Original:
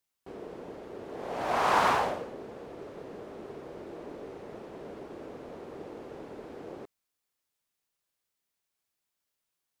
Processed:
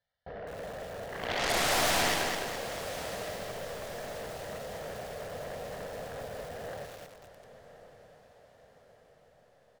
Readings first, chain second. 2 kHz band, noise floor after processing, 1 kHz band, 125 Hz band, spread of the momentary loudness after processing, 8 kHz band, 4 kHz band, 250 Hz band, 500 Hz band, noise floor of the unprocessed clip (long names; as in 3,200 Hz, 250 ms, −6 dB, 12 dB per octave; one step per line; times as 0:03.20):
+3.5 dB, −64 dBFS, −4.5 dB, +4.5 dB, 19 LU, +13.5 dB, +9.5 dB, −1.5 dB, +1.0 dB, −85 dBFS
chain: low-pass filter 2,500 Hz 12 dB per octave
phaser with its sweep stopped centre 1,700 Hz, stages 8
comb filter 1.7 ms, depth 50%
soft clipping −24 dBFS, distortion −14 dB
harmonic generator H 3 −22 dB, 6 −25 dB, 7 −15 dB, 8 −31 dB, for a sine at −24 dBFS
sine wavefolder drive 14 dB, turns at −21.5 dBFS
feedback delay with all-pass diffusion 1,159 ms, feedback 51%, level −13 dB
feedback echo at a low word length 209 ms, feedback 55%, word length 7 bits, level −3.5 dB
level −3.5 dB